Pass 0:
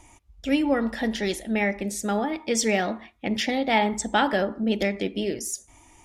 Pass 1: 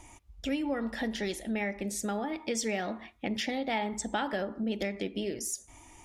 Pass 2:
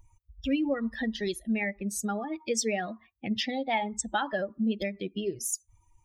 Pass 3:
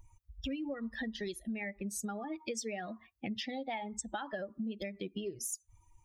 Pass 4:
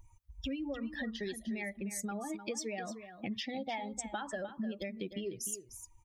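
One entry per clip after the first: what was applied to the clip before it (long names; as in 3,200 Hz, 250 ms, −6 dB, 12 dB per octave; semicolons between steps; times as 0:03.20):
downward compressor 2.5 to 1, threshold −33 dBFS, peak gain reduction 11 dB
spectral dynamics exaggerated over time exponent 2; level +6.5 dB
downward compressor, threshold −36 dBFS, peak gain reduction 12.5 dB
single-tap delay 303 ms −11 dB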